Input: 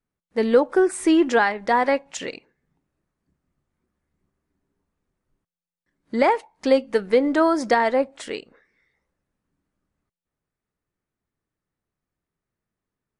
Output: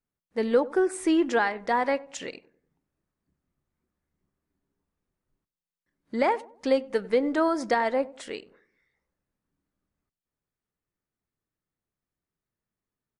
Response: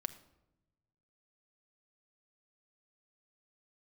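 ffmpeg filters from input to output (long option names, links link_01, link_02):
-filter_complex "[0:a]asplit=2[link_01][link_02];[link_02]adelay=96,lowpass=frequency=860:poles=1,volume=-18dB,asplit=2[link_03][link_04];[link_04]adelay=96,lowpass=frequency=860:poles=1,volume=0.43,asplit=2[link_05][link_06];[link_06]adelay=96,lowpass=frequency=860:poles=1,volume=0.43,asplit=2[link_07][link_08];[link_08]adelay=96,lowpass=frequency=860:poles=1,volume=0.43[link_09];[link_01][link_03][link_05][link_07][link_09]amix=inputs=5:normalize=0,volume=-5.5dB"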